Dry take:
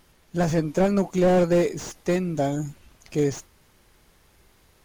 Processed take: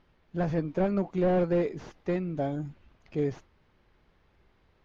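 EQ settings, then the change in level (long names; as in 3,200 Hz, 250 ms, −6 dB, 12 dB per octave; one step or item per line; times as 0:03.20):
high-frequency loss of the air 270 metres
−5.5 dB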